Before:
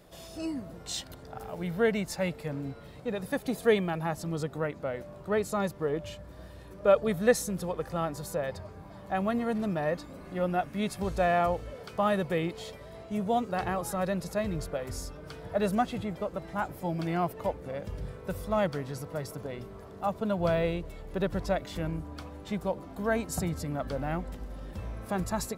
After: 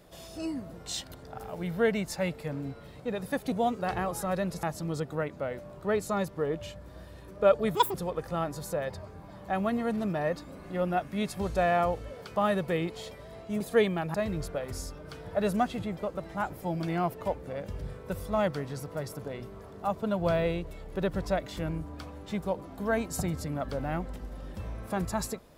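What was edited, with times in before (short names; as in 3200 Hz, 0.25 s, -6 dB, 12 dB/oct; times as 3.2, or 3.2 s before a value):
3.52–4.06 swap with 13.22–14.33
7.18–7.56 speed 196%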